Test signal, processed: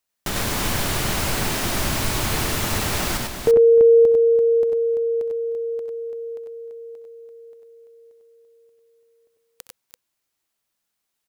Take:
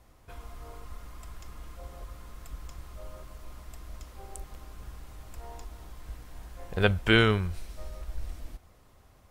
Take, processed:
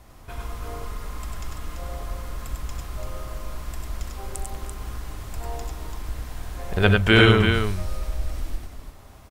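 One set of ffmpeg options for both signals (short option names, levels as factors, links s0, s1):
-filter_complex "[0:a]asplit=2[s0][s1];[s1]acompressor=threshold=0.0178:ratio=6,volume=0.891[s2];[s0][s2]amix=inputs=2:normalize=0,bandreject=f=500:w=12,aecho=1:1:65|90|99|307|338:0.168|0.335|0.668|0.1|0.473,volume=1.5"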